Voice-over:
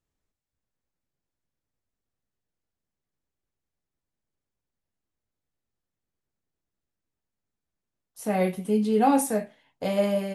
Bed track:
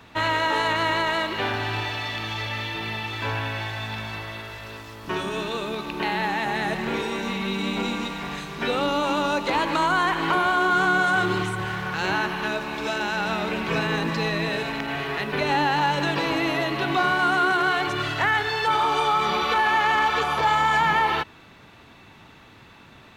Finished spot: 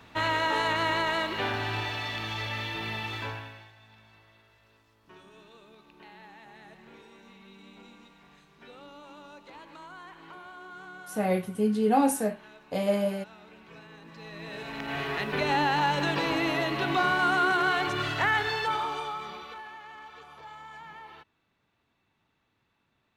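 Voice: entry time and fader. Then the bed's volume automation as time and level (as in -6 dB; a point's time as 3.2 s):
2.90 s, -2.0 dB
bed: 3.16 s -4 dB
3.75 s -25 dB
14.01 s -25 dB
14.98 s -3.5 dB
18.5 s -3.5 dB
19.81 s -25.5 dB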